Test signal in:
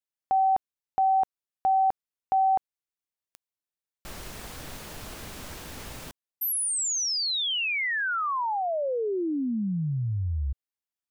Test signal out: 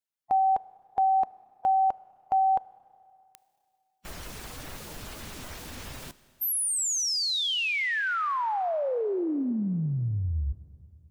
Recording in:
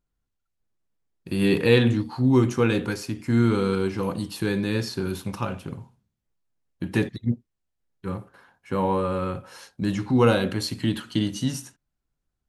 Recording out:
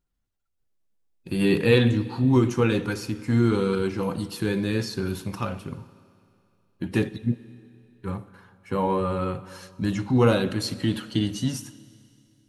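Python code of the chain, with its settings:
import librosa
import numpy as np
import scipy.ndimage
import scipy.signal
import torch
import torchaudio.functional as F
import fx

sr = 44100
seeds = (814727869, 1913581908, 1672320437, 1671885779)

y = fx.spec_quant(x, sr, step_db=15)
y = fx.rev_schroeder(y, sr, rt60_s=2.6, comb_ms=25, drr_db=17.0)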